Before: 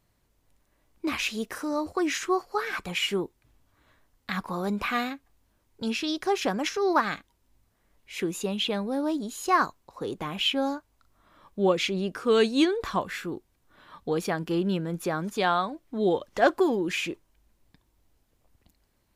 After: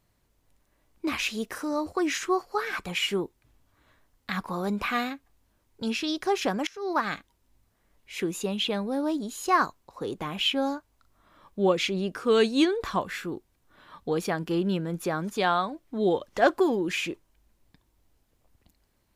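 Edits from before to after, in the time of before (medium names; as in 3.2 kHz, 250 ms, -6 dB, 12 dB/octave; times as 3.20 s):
6.67–7.13 s: fade in, from -22.5 dB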